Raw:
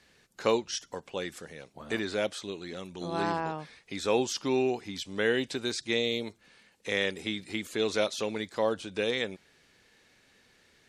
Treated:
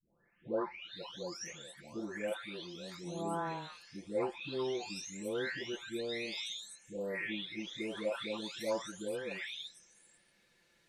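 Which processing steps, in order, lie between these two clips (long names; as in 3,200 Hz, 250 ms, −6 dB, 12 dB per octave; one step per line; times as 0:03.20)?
every frequency bin delayed by itself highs late, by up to 959 ms
level −5 dB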